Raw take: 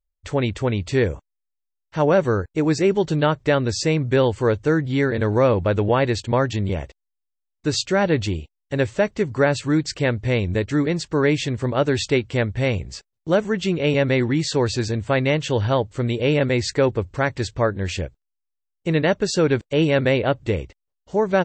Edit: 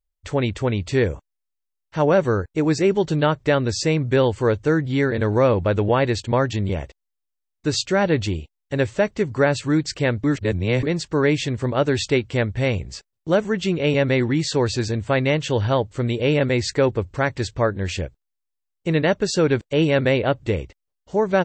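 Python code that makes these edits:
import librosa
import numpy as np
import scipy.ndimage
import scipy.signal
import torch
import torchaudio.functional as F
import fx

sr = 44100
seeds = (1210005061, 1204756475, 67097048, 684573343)

y = fx.edit(x, sr, fx.reverse_span(start_s=10.24, length_s=0.59), tone=tone)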